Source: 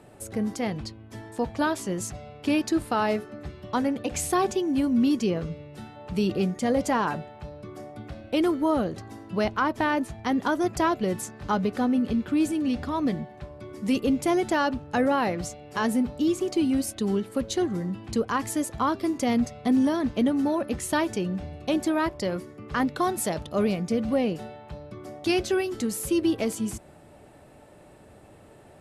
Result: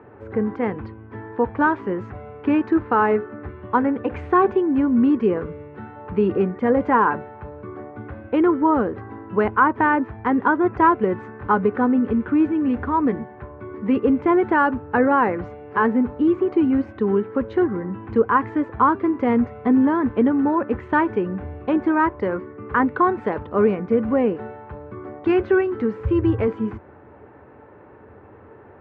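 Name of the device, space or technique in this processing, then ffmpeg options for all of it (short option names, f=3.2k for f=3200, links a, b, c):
bass cabinet: -filter_complex "[0:a]asettb=1/sr,asplit=3[a][b][c];[a]atrim=end=26.004[d];[b]atrim=start=26:end=26.48,asetpts=PTS-STARTPTS,afade=t=in:d=0.004:c=qsin,afade=t=out:st=0.476:d=0.004:c=qsin,lowshelf=f=150:t=q:w=1.5:g=13[e];[c]atrim=start=26.476[f];[d][e]acrossfade=d=0.004:c1=hsin:c2=qsin[g];[g][f]acrossfade=d=0.004:c1=qsin:c2=hsin,highpass=80,equalizer=f=87:t=q:w=4:g=5,equalizer=f=160:t=q:w=4:g=-10,equalizer=f=440:t=q:w=4:g=6,equalizer=f=640:t=q:w=4:g=-8,equalizer=f=1k:t=q:w=4:g=6,equalizer=f=1.5k:t=q:w=4:g=4,lowpass=f=2k:w=0.5412,lowpass=f=2k:w=1.3066,volume=5.5dB"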